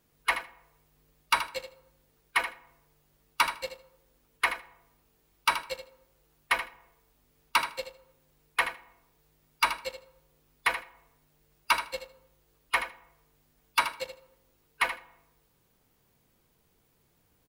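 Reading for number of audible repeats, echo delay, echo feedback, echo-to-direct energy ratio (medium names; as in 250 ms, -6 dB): 2, 78 ms, 15%, -10.0 dB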